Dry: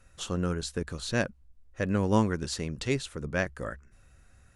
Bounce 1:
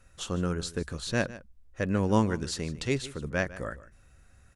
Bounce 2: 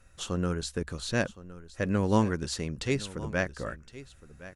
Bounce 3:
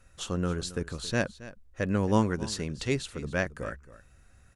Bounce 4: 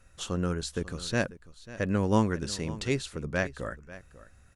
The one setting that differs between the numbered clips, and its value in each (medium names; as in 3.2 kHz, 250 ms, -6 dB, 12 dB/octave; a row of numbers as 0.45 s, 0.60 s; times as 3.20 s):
delay, time: 151 ms, 1065 ms, 273 ms, 543 ms